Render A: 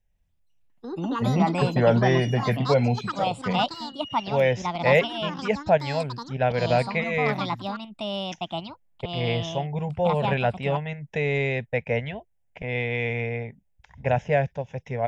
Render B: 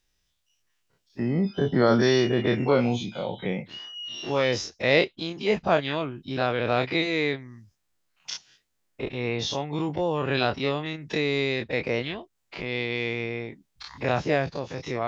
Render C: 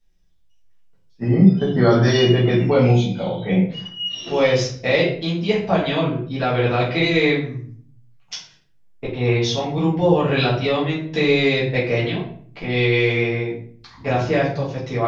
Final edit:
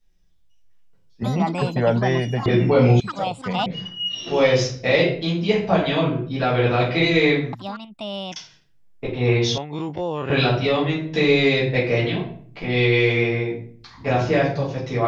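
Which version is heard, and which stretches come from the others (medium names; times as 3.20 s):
C
1.23–2.46 s: from A
3.00–3.66 s: from A
7.53–8.36 s: from A
9.58–10.30 s: from B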